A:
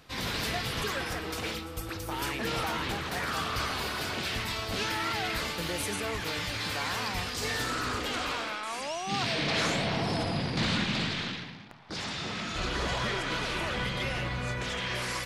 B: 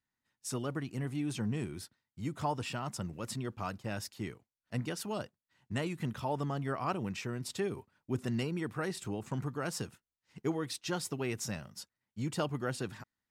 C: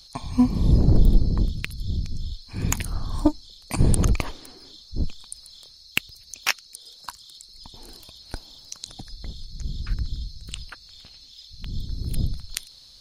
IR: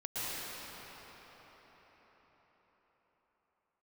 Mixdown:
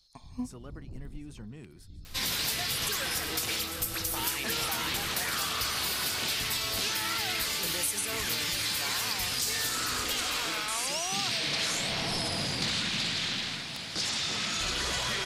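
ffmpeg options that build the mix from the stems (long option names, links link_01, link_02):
-filter_complex "[0:a]crystalizer=i=5.5:c=0,adelay=2050,volume=-1.5dB,asplit=2[link_01][link_02];[link_02]volume=-15.5dB[link_03];[1:a]volume=-10.5dB,asplit=3[link_04][link_05][link_06];[link_05]volume=-20dB[link_07];[2:a]volume=-16.5dB[link_08];[link_06]apad=whole_len=573538[link_09];[link_08][link_09]sidechaincompress=threshold=-54dB:ratio=8:attack=8.2:release=544[link_10];[link_03][link_07]amix=inputs=2:normalize=0,aecho=0:1:747|1494|2241|2988|3735|4482|5229|5976|6723:1|0.58|0.336|0.195|0.113|0.0656|0.0381|0.0221|0.0128[link_11];[link_01][link_04][link_10][link_11]amix=inputs=4:normalize=0,acompressor=threshold=-28dB:ratio=5"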